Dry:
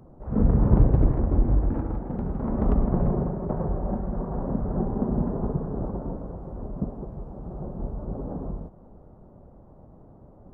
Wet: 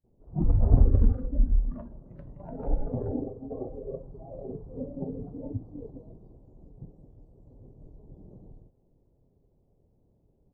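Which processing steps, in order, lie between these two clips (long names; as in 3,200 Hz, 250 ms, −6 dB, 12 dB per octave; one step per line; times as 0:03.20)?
noise gate with hold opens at −42 dBFS
pitch shifter −6 semitones
noise reduction from a noise print of the clip's start 16 dB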